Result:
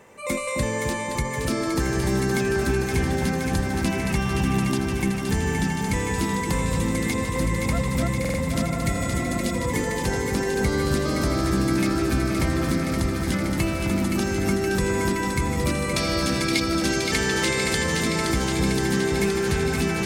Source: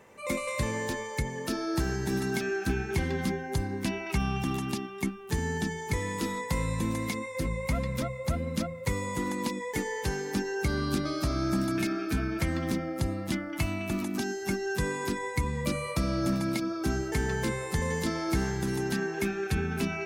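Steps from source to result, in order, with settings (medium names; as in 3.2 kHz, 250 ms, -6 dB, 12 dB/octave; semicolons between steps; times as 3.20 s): 15.96–17.84 s: frequency weighting D; on a send: echo whose repeats swap between lows and highs 260 ms, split 1.1 kHz, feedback 89%, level -4.5 dB; 8.71–9.52 s: on the sum: spectral replace 430–1700 Hz before; peaking EQ 8.3 kHz +4 dB 0.42 oct; in parallel at -3 dB: peak limiter -19.5 dBFS, peak gain reduction 8 dB; on the sum: buffer glitch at 8.20 s, samples 2048, times 3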